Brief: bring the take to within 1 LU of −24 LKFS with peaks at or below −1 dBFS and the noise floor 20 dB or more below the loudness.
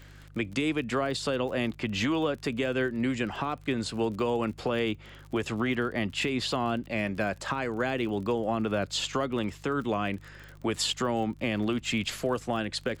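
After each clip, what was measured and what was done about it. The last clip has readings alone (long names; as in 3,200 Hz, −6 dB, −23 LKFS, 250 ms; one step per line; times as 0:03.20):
crackle rate 42 per second; mains hum 50 Hz; hum harmonics up to 150 Hz; level of the hum −48 dBFS; integrated loudness −30.0 LKFS; sample peak −15.0 dBFS; target loudness −24.0 LKFS
→ click removal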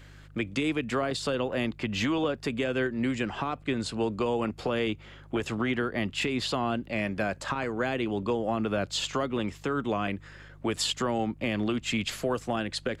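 crackle rate 0.077 per second; mains hum 50 Hz; hum harmonics up to 150 Hz; level of the hum −48 dBFS
→ hum removal 50 Hz, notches 3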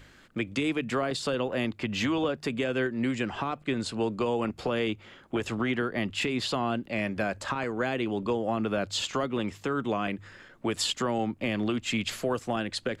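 mains hum none found; integrated loudness −30.0 LKFS; sample peak −15.5 dBFS; target loudness −24.0 LKFS
→ level +6 dB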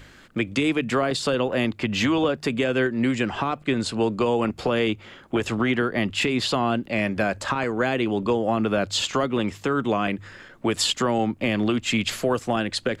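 integrated loudness −24.0 LKFS; sample peak −9.5 dBFS; background noise floor −49 dBFS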